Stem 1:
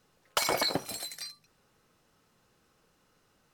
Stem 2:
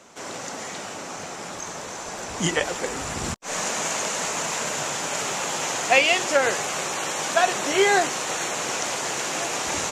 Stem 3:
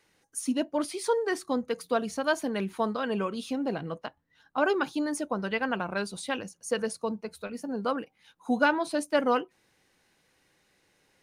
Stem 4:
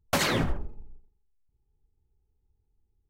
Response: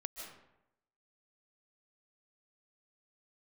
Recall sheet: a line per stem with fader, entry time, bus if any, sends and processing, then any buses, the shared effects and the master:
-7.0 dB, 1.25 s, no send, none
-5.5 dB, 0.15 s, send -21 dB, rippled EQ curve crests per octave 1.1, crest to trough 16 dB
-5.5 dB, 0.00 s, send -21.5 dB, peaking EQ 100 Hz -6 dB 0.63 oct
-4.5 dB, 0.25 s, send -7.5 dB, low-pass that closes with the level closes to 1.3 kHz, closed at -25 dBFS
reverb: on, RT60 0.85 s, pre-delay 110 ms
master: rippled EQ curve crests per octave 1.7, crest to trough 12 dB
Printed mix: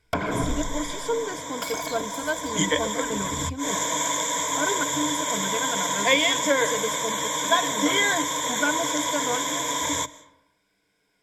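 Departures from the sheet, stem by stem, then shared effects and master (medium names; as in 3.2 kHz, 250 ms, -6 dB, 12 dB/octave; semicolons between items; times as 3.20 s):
stem 4: entry 0.25 s -> 0.00 s; reverb return +8.5 dB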